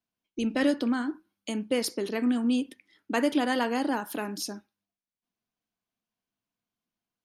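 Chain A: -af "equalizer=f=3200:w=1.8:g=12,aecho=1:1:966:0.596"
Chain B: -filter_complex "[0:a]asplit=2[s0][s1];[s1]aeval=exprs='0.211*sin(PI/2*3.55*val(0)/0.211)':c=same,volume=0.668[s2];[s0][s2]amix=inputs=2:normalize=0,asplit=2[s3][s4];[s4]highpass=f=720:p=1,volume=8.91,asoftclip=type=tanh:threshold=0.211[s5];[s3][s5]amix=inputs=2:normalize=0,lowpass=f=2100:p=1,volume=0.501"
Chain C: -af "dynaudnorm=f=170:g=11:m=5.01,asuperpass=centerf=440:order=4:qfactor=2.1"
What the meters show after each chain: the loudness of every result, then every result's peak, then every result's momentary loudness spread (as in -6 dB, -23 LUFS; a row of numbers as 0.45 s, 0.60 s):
-27.0 LUFS, -20.5 LUFS, -25.0 LUFS; -9.0 dBFS, -13.5 dBFS, -8.5 dBFS; 13 LU, 9 LU, 17 LU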